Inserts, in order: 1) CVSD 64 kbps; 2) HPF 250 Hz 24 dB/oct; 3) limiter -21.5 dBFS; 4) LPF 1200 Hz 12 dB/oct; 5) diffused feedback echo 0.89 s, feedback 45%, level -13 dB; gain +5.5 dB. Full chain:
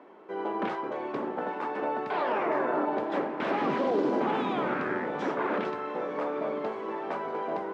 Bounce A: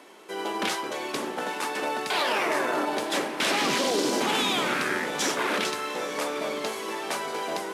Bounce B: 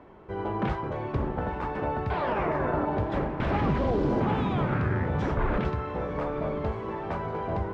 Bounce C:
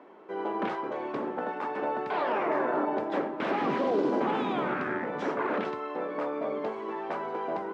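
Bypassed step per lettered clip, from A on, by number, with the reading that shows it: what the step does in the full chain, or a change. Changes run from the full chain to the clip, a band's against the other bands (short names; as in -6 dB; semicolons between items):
4, 4 kHz band +18.5 dB; 2, 125 Hz band +18.5 dB; 5, echo-to-direct -12.0 dB to none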